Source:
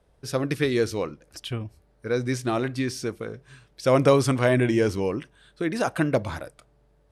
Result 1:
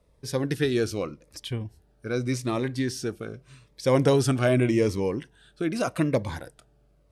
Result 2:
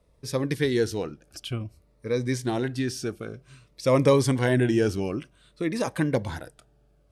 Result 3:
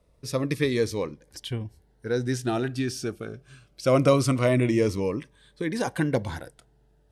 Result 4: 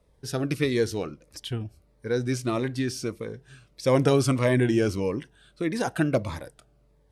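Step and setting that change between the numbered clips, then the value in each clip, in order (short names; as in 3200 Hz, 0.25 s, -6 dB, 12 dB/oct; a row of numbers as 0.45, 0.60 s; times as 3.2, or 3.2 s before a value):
cascading phaser, rate: 0.84, 0.54, 0.22, 1.6 Hz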